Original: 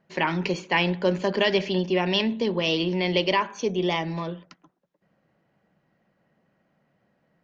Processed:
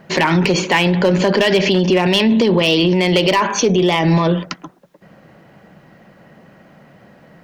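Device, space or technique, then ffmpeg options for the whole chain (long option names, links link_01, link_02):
loud club master: -af "acompressor=threshold=-28dB:ratio=2,asoftclip=type=hard:threshold=-21dB,alimiter=level_in=29dB:limit=-1dB:release=50:level=0:latency=1,volume=-6dB"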